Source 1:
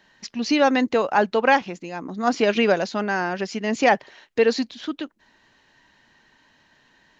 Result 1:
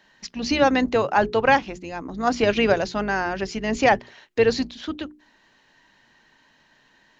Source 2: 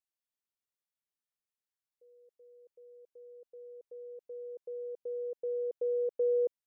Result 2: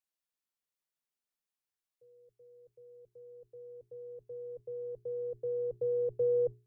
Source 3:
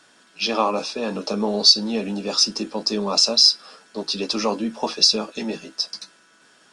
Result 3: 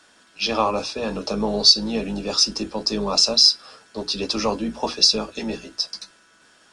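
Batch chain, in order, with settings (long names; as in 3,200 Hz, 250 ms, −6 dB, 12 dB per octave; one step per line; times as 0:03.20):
sub-octave generator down 2 octaves, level −5 dB
parametric band 64 Hz −14 dB 0.63 octaves
mains-hum notches 60/120/180/240/300/360/420 Hz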